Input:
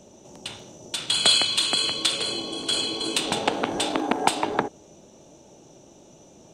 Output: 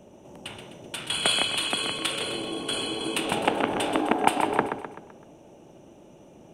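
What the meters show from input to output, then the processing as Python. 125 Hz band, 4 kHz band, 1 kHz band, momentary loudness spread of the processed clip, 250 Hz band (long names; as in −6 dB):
+0.5 dB, −5.5 dB, +1.0 dB, 17 LU, +0.5 dB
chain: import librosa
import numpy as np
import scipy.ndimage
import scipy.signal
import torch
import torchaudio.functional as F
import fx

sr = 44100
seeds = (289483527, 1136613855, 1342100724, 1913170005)

y = fx.band_shelf(x, sr, hz=5300.0, db=-13.0, octaves=1.3)
y = fx.echo_feedback(y, sr, ms=128, feedback_pct=47, wet_db=-8)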